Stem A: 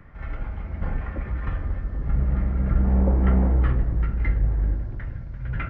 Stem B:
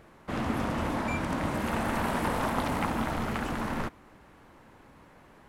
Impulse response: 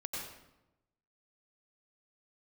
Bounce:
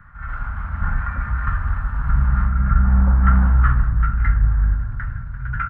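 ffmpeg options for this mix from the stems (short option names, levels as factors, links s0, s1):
-filter_complex "[0:a]dynaudnorm=f=180:g=5:m=1.68,volume=1.12[s0];[1:a]acompressor=threshold=0.0282:ratio=6,highpass=f=330:w=0.5412,highpass=f=330:w=1.3066,aemphasis=mode=reproduction:type=75kf,volume=0.75,asplit=3[s1][s2][s3];[s1]atrim=end=2.48,asetpts=PTS-STARTPTS,afade=t=out:st=2.476:d=0.004:c=hsin[s4];[s2]atrim=start=2.48:end=3.29,asetpts=PTS-STARTPTS,volume=0[s5];[s3]atrim=start=3.29,asetpts=PTS-STARTPTS,afade=t=in:d=0.004:c=hsin[s6];[s4][s5][s6]concat=n=3:v=0:a=1,asplit=2[s7][s8];[s8]volume=0.211,aecho=0:1:647:1[s9];[s0][s7][s9]amix=inputs=3:normalize=0,firequalizer=gain_entry='entry(100,0);entry(230,-6);entry(350,-22);entry(860,-3);entry(1400,12);entry(2100,-5);entry(4100,-10);entry(6300,-14);entry(10000,-6)':delay=0.05:min_phase=1"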